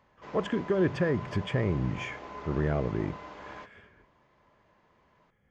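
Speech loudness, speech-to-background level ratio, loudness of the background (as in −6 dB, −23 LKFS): −30.5 LKFS, 13.5 dB, −44.0 LKFS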